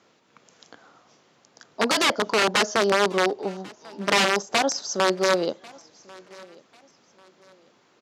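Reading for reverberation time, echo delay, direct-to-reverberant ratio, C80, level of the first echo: no reverb audible, 1,093 ms, no reverb audible, no reverb audible, −24.0 dB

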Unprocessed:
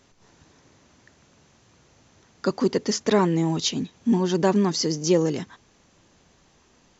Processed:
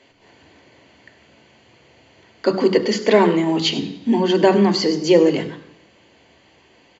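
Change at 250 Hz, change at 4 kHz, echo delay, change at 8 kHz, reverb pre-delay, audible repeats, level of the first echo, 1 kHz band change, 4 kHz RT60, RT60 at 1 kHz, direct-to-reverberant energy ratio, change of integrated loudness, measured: +5.0 dB, +6.0 dB, 99 ms, can't be measured, 3 ms, 1, −17.5 dB, +6.0 dB, 0.90 s, 0.85 s, 8.0 dB, +6.0 dB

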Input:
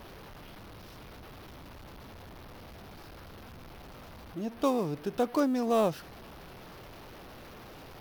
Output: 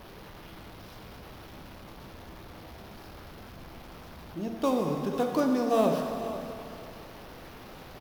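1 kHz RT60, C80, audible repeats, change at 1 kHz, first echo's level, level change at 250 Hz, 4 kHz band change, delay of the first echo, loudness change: 2.6 s, 4.0 dB, 1, +2.0 dB, −15.0 dB, +2.0 dB, +2.0 dB, 496 ms, +1.0 dB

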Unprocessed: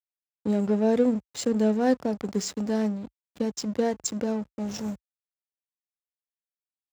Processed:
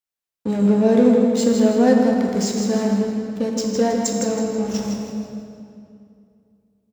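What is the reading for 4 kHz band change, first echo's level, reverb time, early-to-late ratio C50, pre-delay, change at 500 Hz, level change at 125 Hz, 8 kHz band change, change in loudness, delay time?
+7.0 dB, −6.5 dB, 2.5 s, 0.5 dB, 3 ms, +8.0 dB, +8.5 dB, +7.0 dB, +8.0 dB, 161 ms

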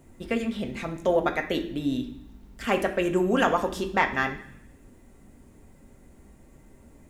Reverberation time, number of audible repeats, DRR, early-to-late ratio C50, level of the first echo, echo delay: 0.65 s, no echo audible, 3.0 dB, 11.0 dB, no echo audible, no echo audible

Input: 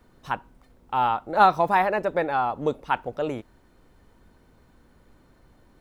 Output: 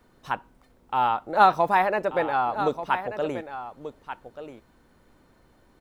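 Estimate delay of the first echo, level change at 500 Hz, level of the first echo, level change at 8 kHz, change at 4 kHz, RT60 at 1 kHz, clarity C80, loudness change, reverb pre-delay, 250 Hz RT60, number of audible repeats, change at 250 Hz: 1,185 ms, 0.0 dB, −11.5 dB, can't be measured, +0.5 dB, no reverb audible, no reverb audible, 0.0 dB, no reverb audible, no reverb audible, 1, −1.5 dB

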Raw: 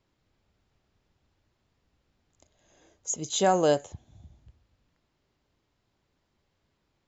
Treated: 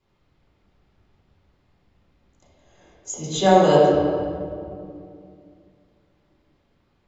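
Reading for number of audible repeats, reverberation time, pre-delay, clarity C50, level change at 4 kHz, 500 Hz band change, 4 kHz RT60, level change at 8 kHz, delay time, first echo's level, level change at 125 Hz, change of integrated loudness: no echo audible, 2.4 s, 3 ms, −1.5 dB, +5.5 dB, +9.5 dB, 1.3 s, can't be measured, no echo audible, no echo audible, +11.5 dB, +6.5 dB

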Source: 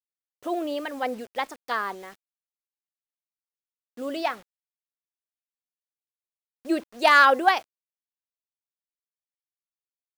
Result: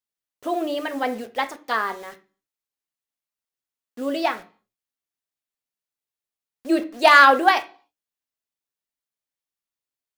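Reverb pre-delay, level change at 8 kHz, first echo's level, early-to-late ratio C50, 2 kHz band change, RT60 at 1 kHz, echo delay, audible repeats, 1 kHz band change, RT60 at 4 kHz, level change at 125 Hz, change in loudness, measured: 3 ms, +4.0 dB, no echo audible, 16.0 dB, +4.0 dB, 0.40 s, no echo audible, no echo audible, +4.0 dB, 0.45 s, can't be measured, +4.0 dB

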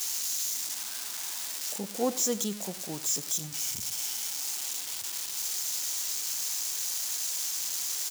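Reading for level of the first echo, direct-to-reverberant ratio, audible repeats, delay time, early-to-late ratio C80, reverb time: −18.0 dB, no reverb audible, 1, 97 ms, no reverb audible, no reverb audible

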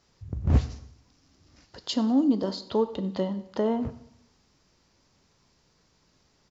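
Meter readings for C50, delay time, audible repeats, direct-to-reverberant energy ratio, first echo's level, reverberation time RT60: 14.0 dB, 94 ms, 2, 11.0 dB, −20.5 dB, 0.70 s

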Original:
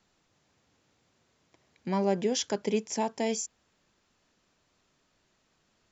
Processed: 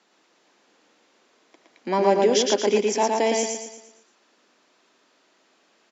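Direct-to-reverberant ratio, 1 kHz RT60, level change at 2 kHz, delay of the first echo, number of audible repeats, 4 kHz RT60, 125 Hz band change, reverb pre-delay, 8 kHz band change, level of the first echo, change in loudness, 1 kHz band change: no reverb audible, no reverb audible, +10.5 dB, 115 ms, 5, no reverb audible, can't be measured, no reverb audible, can't be measured, −3.0 dB, +9.0 dB, +11.0 dB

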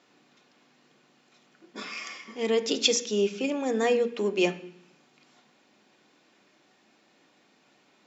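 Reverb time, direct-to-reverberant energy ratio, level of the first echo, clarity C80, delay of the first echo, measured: 0.70 s, 5.5 dB, no echo audible, 17.0 dB, no echo audible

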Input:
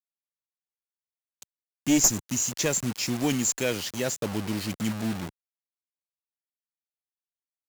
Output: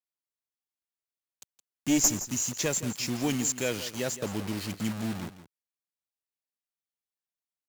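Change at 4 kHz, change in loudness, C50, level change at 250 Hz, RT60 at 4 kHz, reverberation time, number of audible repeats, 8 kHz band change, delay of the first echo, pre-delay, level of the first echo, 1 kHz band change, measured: −3.0 dB, −3.0 dB, no reverb audible, −3.0 dB, no reverb audible, no reverb audible, 1, −3.0 dB, 168 ms, no reverb audible, −13.5 dB, −3.0 dB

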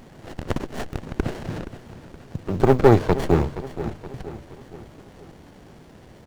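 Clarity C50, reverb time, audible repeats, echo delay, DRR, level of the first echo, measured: no reverb audible, no reverb audible, 4, 472 ms, no reverb audible, −14.0 dB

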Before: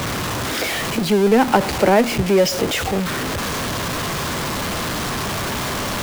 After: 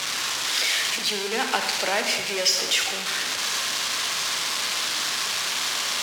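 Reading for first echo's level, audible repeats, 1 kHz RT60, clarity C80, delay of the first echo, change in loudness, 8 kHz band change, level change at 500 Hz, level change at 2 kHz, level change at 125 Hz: no echo audible, no echo audible, 1.2 s, 7.5 dB, no echo audible, −3.5 dB, +2.5 dB, −14.0 dB, −1.0 dB, −24.5 dB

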